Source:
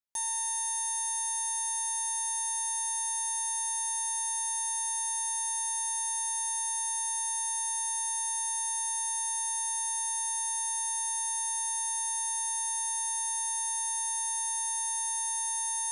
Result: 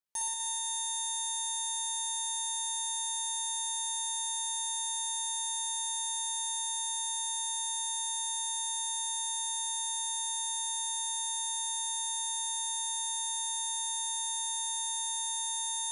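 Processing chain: flutter echo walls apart 10.6 m, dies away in 1.3 s; gain -1.5 dB

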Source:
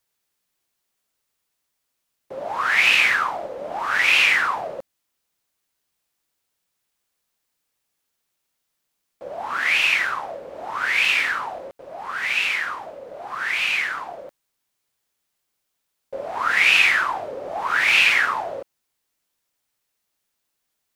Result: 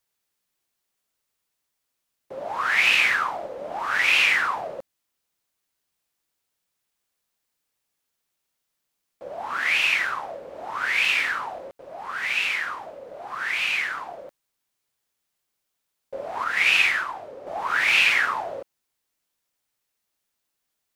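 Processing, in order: 16.44–17.47 upward expander 1.5:1, over -25 dBFS; gain -2.5 dB

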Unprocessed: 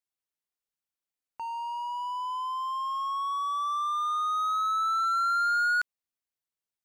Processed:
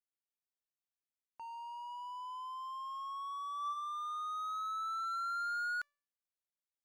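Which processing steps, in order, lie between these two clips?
resonator 580 Hz, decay 0.46 s, mix 50%; gain -5.5 dB

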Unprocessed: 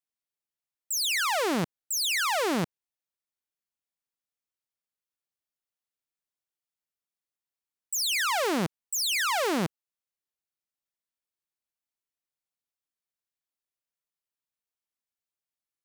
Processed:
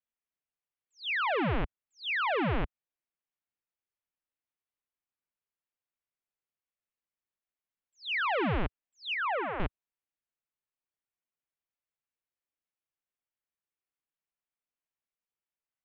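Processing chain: mistuned SSB -210 Hz 150–3200 Hz; 9.14–9.6 three-band isolator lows -21 dB, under 400 Hz, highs -18 dB, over 2300 Hz; gain -1.5 dB

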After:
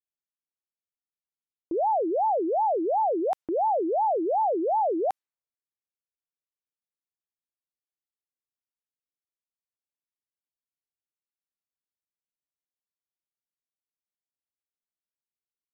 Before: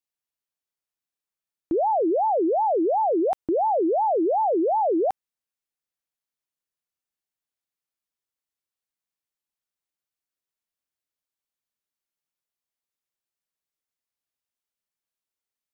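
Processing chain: low-pass opened by the level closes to 340 Hz, open at -23 dBFS; low shelf 360 Hz -10.5 dB

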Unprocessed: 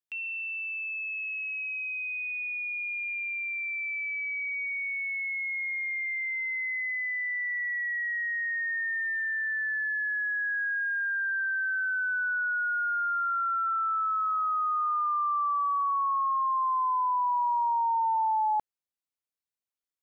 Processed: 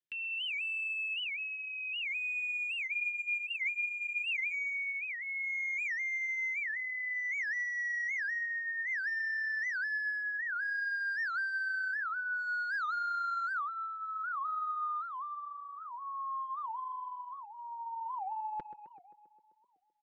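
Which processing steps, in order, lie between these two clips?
band shelf 850 Hz -14.5 dB 1.2 oct; comb 5.7 ms, depth 44%; compressor 16:1, threshold -30 dBFS, peak gain reduction 5 dB; hard clip -31.5 dBFS, distortion -20 dB; air absorption 150 m; tape echo 0.13 s, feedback 82%, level -9.5 dB, low-pass 1500 Hz; spectral freeze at 2.91, 1.61 s; record warp 78 rpm, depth 250 cents

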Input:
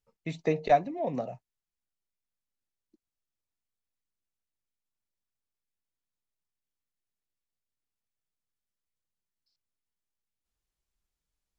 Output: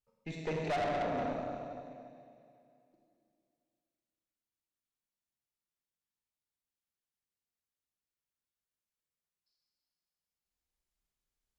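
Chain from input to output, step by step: Schroeder reverb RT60 2.6 s, combs from 31 ms, DRR -2.5 dB; tube stage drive 27 dB, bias 0.7; gain -3 dB

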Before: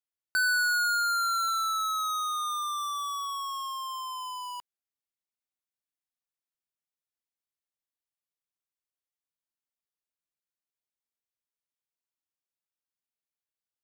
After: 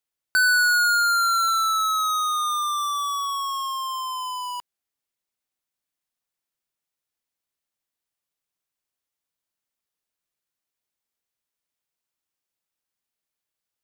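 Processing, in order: 2.46–3.32 bell 70 Hz +15 dB 0.47 oct; gain +7 dB

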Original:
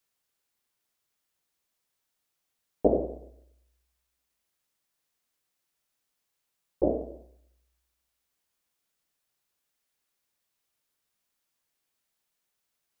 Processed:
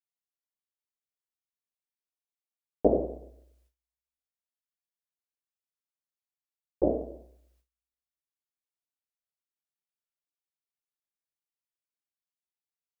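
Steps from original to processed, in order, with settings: gate with hold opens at -60 dBFS

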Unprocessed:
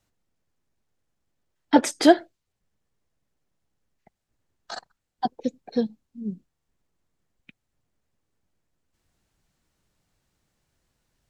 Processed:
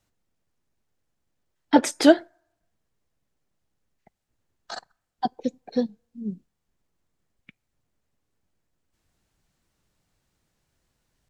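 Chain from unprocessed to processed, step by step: on a send at -17.5 dB: differentiator + reverb RT60 1.0 s, pre-delay 7 ms; on the sum: record warp 78 rpm, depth 100 cents

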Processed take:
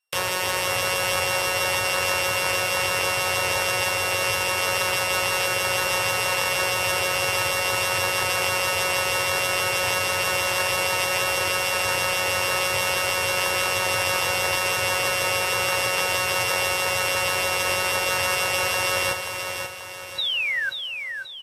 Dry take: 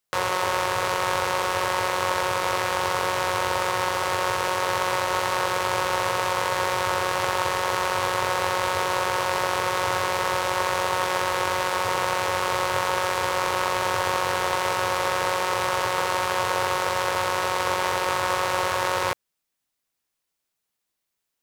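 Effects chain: sample sorter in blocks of 16 samples; painted sound fall, 20.18–20.7, 1500–4000 Hz -24 dBFS; feedback echo 0.533 s, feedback 46%, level -6.5 dB; Vorbis 32 kbps 48000 Hz

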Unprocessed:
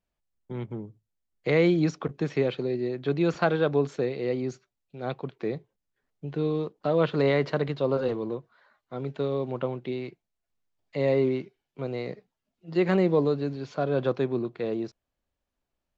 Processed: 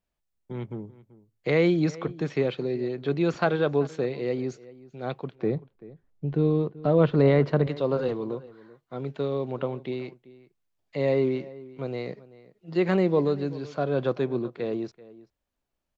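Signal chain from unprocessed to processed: 5.35–7.67 tilt -2.5 dB/oct; outdoor echo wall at 66 m, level -19 dB

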